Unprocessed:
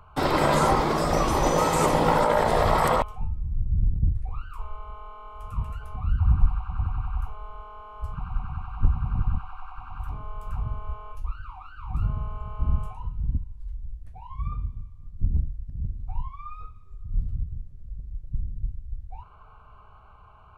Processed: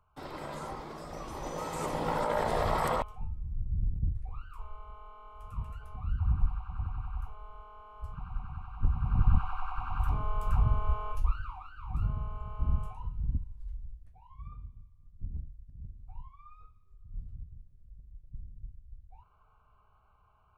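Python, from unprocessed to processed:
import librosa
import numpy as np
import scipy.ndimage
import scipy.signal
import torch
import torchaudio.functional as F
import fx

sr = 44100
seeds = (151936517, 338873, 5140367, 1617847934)

y = fx.gain(x, sr, db=fx.line((1.13, -19.5), (2.4, -8.0), (8.79, -8.0), (9.42, 4.0), (11.22, 4.0), (11.72, -5.0), (13.77, -5.0), (14.18, -14.5)))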